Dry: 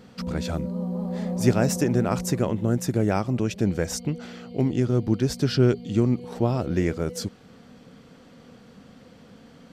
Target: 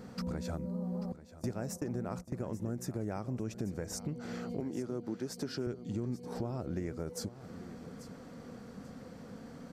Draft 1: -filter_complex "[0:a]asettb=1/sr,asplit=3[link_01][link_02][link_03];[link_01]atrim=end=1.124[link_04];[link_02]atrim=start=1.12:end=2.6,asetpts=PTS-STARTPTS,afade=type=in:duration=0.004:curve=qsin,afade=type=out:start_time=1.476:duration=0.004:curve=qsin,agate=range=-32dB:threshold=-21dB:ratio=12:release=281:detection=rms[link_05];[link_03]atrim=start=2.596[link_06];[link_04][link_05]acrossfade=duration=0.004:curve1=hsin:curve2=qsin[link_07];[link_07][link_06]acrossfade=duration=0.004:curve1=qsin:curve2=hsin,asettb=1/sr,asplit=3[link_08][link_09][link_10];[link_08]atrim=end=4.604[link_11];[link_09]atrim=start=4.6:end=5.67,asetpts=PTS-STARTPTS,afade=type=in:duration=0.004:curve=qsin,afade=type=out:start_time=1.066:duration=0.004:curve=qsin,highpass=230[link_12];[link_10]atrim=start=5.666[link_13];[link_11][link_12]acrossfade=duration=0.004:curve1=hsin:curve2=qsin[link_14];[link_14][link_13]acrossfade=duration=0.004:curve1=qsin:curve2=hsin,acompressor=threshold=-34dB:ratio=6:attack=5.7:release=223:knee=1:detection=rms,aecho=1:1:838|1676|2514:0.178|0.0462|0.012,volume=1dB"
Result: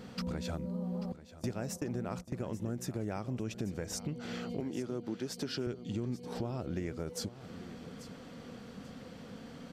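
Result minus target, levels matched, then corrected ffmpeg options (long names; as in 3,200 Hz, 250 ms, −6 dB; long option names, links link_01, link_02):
4,000 Hz band +4.0 dB
-filter_complex "[0:a]asettb=1/sr,asplit=3[link_01][link_02][link_03];[link_01]atrim=end=1.124[link_04];[link_02]atrim=start=1.12:end=2.6,asetpts=PTS-STARTPTS,afade=type=in:duration=0.004:curve=qsin,afade=type=out:start_time=1.476:duration=0.004:curve=qsin,agate=range=-32dB:threshold=-21dB:ratio=12:release=281:detection=rms[link_05];[link_03]atrim=start=2.596[link_06];[link_04][link_05]acrossfade=duration=0.004:curve1=hsin:curve2=qsin[link_07];[link_07][link_06]acrossfade=duration=0.004:curve1=qsin:curve2=hsin,asettb=1/sr,asplit=3[link_08][link_09][link_10];[link_08]atrim=end=4.604[link_11];[link_09]atrim=start=4.6:end=5.67,asetpts=PTS-STARTPTS,afade=type=in:duration=0.004:curve=qsin,afade=type=out:start_time=1.066:duration=0.004:curve=qsin,highpass=230[link_12];[link_10]atrim=start=5.666[link_13];[link_11][link_12]acrossfade=duration=0.004:curve1=hsin:curve2=qsin[link_14];[link_14][link_13]acrossfade=duration=0.004:curve1=qsin:curve2=hsin,acompressor=threshold=-34dB:ratio=6:attack=5.7:release=223:knee=1:detection=rms,equalizer=frequency=3100:width=1.5:gain=-10,aecho=1:1:838|1676|2514:0.178|0.0462|0.012,volume=1dB"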